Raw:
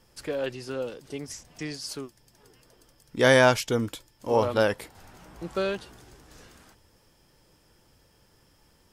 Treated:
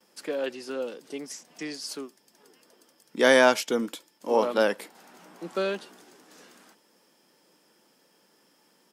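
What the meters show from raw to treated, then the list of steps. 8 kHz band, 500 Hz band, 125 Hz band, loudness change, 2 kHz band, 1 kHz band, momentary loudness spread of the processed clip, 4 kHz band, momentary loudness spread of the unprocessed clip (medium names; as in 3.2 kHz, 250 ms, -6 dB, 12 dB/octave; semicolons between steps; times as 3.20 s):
0.0 dB, 0.0 dB, under -15 dB, 0.0 dB, 0.0 dB, 0.0 dB, 20 LU, 0.0 dB, 20 LU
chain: steep high-pass 190 Hz 36 dB/octave; gate with hold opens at -55 dBFS; speakerphone echo 90 ms, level -28 dB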